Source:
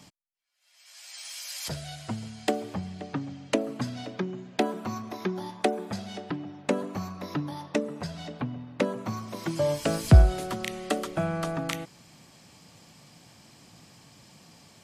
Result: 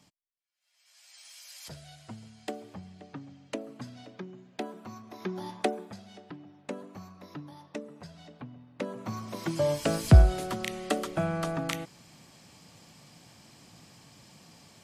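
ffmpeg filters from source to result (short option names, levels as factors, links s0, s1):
-af "volume=2.99,afade=t=in:st=5.07:d=0.45:silence=0.334965,afade=t=out:st=5.52:d=0.43:silence=0.298538,afade=t=in:st=8.73:d=0.56:silence=0.298538"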